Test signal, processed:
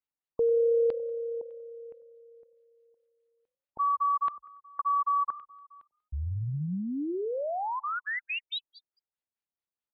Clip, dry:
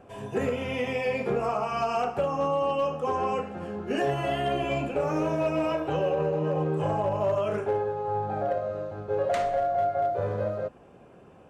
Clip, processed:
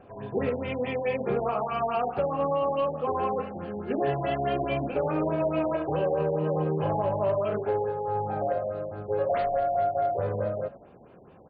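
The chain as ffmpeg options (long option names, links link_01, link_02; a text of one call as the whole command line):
ffmpeg -i in.wav -filter_complex "[0:a]asplit=4[link_01][link_02][link_03][link_04];[link_02]adelay=95,afreqshift=35,volume=-18.5dB[link_05];[link_03]adelay=190,afreqshift=70,volume=-27.4dB[link_06];[link_04]adelay=285,afreqshift=105,volume=-36.2dB[link_07];[link_01][link_05][link_06][link_07]amix=inputs=4:normalize=0,afftfilt=real='re*lt(b*sr/1024,920*pow(5000/920,0.5+0.5*sin(2*PI*4.7*pts/sr)))':imag='im*lt(b*sr/1024,920*pow(5000/920,0.5+0.5*sin(2*PI*4.7*pts/sr)))':win_size=1024:overlap=0.75" out.wav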